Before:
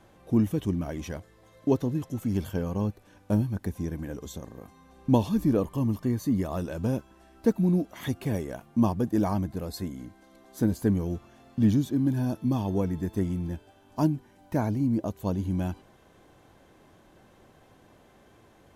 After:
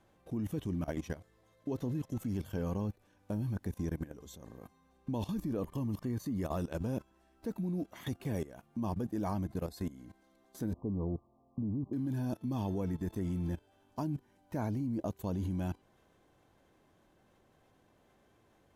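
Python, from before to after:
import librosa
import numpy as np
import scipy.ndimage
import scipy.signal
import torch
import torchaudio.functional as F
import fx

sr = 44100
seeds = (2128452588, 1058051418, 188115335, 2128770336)

y = fx.level_steps(x, sr, step_db=17)
y = fx.brickwall_lowpass(y, sr, high_hz=1200.0, at=(10.73, 11.93))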